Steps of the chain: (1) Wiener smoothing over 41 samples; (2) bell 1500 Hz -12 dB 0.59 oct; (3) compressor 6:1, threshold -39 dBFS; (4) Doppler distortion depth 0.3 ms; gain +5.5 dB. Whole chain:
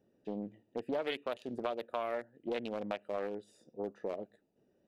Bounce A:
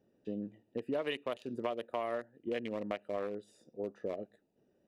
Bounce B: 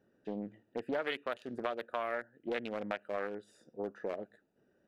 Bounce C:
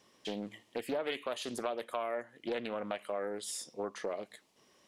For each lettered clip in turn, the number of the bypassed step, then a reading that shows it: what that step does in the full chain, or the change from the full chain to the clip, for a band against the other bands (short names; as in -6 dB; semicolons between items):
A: 4, 125 Hz band +2.0 dB; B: 2, 2 kHz band +5.5 dB; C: 1, 4 kHz band +4.5 dB